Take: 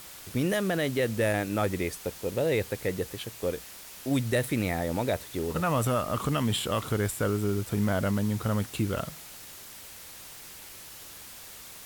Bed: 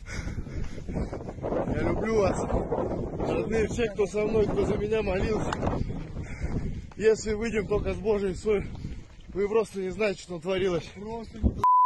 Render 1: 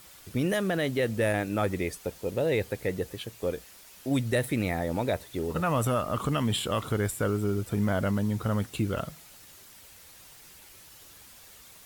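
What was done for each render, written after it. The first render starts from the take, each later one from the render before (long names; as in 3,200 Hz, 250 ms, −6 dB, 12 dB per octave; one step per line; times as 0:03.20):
broadband denoise 7 dB, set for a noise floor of −46 dBFS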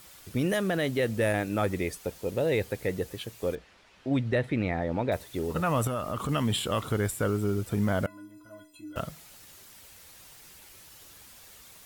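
0:03.55–0:05.12: low-pass filter 3,000 Hz
0:05.87–0:06.29: downward compressor 2.5 to 1, threshold −28 dBFS
0:08.06–0:08.96: stiff-string resonator 300 Hz, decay 0.46 s, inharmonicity 0.03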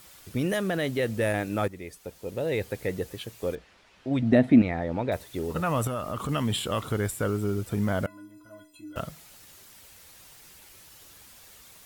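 0:01.68–0:02.77: fade in, from −13 dB
0:04.22–0:04.62: hollow resonant body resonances 250/670 Hz, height 17 dB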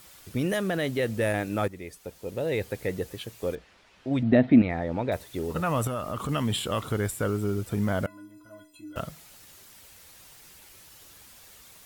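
0:04.23–0:04.70: low-pass filter 4,300 Hz 24 dB per octave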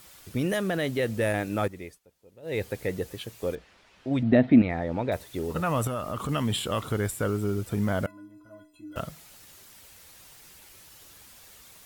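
0:01.84–0:02.58: duck −20 dB, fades 0.16 s
0:08.11–0:08.92: high-shelf EQ 2,100 Hz −9.5 dB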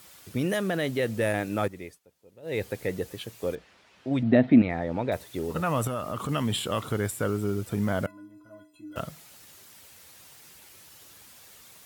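high-pass filter 82 Hz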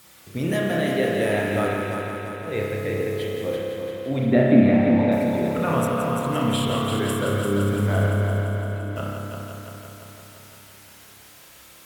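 echo machine with several playback heads 171 ms, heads first and second, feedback 67%, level −8 dB
spring reverb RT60 1.4 s, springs 30 ms, chirp 45 ms, DRR −1.5 dB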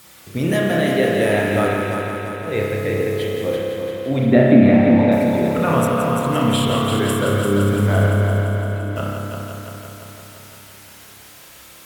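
level +5 dB
brickwall limiter −1 dBFS, peak gain reduction 2.5 dB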